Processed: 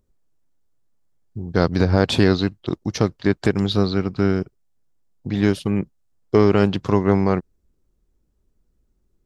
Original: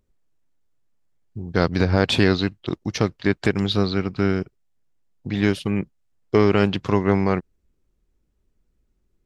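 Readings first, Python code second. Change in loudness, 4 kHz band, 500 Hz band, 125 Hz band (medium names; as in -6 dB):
+1.5 dB, -1.0 dB, +2.0 dB, +2.0 dB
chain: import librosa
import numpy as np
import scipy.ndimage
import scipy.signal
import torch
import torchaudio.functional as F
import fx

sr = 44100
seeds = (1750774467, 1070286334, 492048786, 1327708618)

y = fx.peak_eq(x, sr, hz=2400.0, db=-6.0, octaves=1.3)
y = y * librosa.db_to_amplitude(2.0)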